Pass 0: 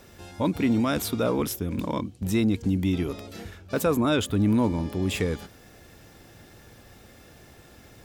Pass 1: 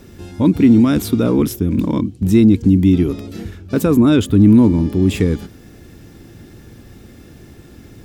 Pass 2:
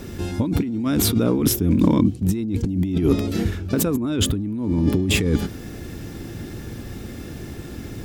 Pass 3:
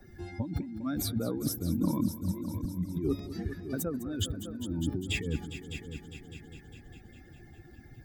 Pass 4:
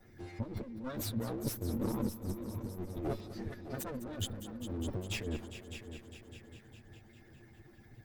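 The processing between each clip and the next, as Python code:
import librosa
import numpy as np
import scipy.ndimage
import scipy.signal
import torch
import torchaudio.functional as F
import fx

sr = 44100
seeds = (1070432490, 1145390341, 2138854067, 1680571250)

y1 = fx.low_shelf_res(x, sr, hz=440.0, db=8.0, q=1.5)
y1 = F.gain(torch.from_numpy(y1), 3.5).numpy()
y2 = fx.over_compress(y1, sr, threshold_db=-20.0, ratio=-1.0)
y2 = fx.attack_slew(y2, sr, db_per_s=400.0)
y3 = fx.bin_expand(y2, sr, power=2.0)
y3 = fx.echo_heads(y3, sr, ms=202, heads='all three', feedback_pct=42, wet_db=-16.5)
y3 = fx.band_squash(y3, sr, depth_pct=40)
y3 = F.gain(torch.from_numpy(y3), -7.5).numpy()
y4 = fx.lower_of_two(y3, sr, delay_ms=8.9)
y4 = F.gain(torch.from_numpy(y4), -4.0).numpy()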